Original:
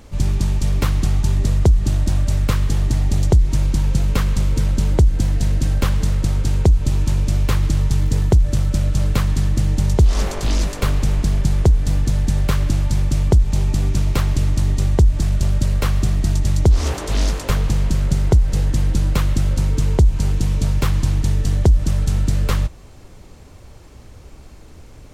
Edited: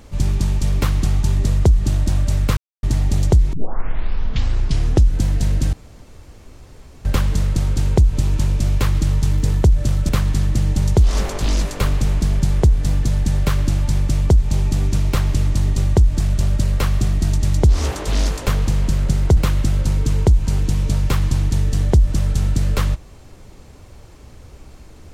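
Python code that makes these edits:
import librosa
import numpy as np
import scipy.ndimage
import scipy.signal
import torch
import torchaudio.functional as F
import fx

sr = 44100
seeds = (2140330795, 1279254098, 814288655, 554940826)

y = fx.edit(x, sr, fx.silence(start_s=2.57, length_s=0.26),
    fx.tape_start(start_s=3.53, length_s=1.68),
    fx.insert_room_tone(at_s=5.73, length_s=1.32),
    fx.cut(start_s=8.77, length_s=0.34),
    fx.cut(start_s=18.39, length_s=0.7), tone=tone)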